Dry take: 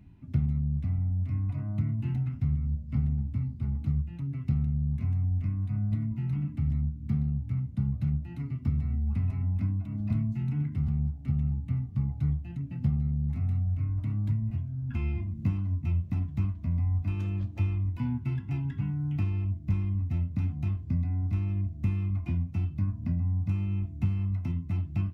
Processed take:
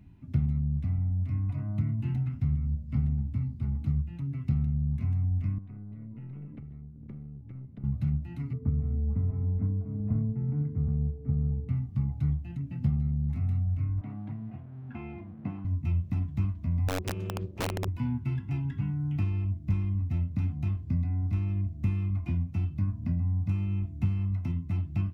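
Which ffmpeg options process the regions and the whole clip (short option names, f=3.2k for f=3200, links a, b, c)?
-filter_complex "[0:a]asettb=1/sr,asplit=3[a][b][c];[a]atrim=end=5.584[d];[b]atrim=start=5.58:end=7.84,asetpts=PTS-STARTPTS,afade=t=in:d=0.004:c=qsin,afade=t=out:st=2.256:d=0.004:c=qsin,acompressor=threshold=-35dB:ratio=5:attack=3.2:release=140:knee=1:detection=peak,highpass=120,lowpass=2.4k,aeval=exprs='(tanh(50.1*val(0)+0.4)-tanh(0.4))/50.1':c=same[e];[c]atrim=start=7.836[f];[d][e]acrossfade=d=0.004:c1=hsin:c2=qsin[g];[g][f]acrossfade=d=0.004:c1=qsin:c2=hsin,asettb=1/sr,asplit=3[h][i][j];[h]atrim=end=8.534[k];[i]atrim=start=8.53:end=11.69,asetpts=PTS-STARTPTS,afade=t=in:d=0.004:c=qsin,afade=t=out:st=3.156:d=0.004:c=qsin,lowpass=f=2.1k:w=0.5412,lowpass=f=2.1k:w=1.3066,aeval=exprs='val(0)+0.00398*sin(2*PI*440*n/s)':c=same,adynamicsmooth=sensitivity=1:basefreq=970[l];[j]atrim=start=11.686[m];[k][l]acrossfade=d=0.004:c1=hsin:c2=qsin[n];[n][m]acrossfade=d=0.004:c1=qsin:c2=hsin,asettb=1/sr,asplit=3[o][p][q];[o]atrim=end=14.014[r];[p]atrim=start=14.01:end=15.65,asetpts=PTS-STARTPTS,afade=t=in:d=0.004:c=qsin,afade=t=out:st=1.636:d=0.004:c=qsin,equalizer=f=750:w=7.2:g=13,aeval=exprs='sgn(val(0))*max(abs(val(0))-0.0015,0)':c=same,highpass=200,lowpass=2.1k[s];[q]atrim=start=15.646[t];[r][s]acrossfade=d=0.004:c1=hsin:c2=qsin[u];[u][t]acrossfade=d=0.004:c1=qsin:c2=hsin,asettb=1/sr,asplit=3[v][w][x];[v]atrim=end=16.884[y];[w]atrim=start=16.88:end=17.88,asetpts=PTS-STARTPTS,afade=t=in:d=0.004:c=qsin,afade=t=out:st=0.996:d=0.004:c=qsin,tremolo=f=280:d=0.857,aeval=exprs='(mod(15.8*val(0)+1,2)-1)/15.8':c=same[z];[x]atrim=start=17.876[aa];[y][z]acrossfade=d=0.004:c1=hsin:c2=qsin[ab];[ab][aa]acrossfade=d=0.004:c1=qsin:c2=hsin"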